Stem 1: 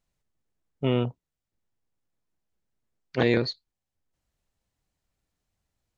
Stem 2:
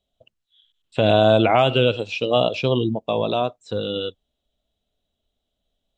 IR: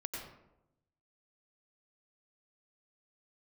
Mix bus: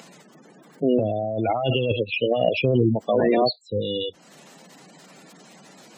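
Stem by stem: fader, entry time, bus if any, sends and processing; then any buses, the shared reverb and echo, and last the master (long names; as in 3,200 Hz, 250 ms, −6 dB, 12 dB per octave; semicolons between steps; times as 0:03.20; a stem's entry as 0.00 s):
+2.0 dB, 0.00 s, no send, Butterworth high-pass 160 Hz 48 dB per octave; upward compression, threshold −26 dBFS
+1.5 dB, 0.00 s, no send, multiband upward and downward expander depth 70%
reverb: not used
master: gate on every frequency bin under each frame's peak −15 dB strong; compressor whose output falls as the input rises −21 dBFS, ratio −1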